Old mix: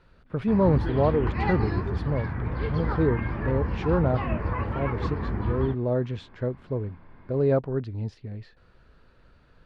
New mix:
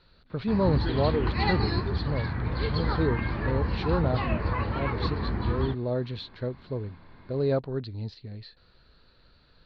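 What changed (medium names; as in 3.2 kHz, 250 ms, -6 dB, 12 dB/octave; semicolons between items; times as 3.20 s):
speech -3.5 dB; master: add resonant low-pass 4.2 kHz, resonance Q 7.9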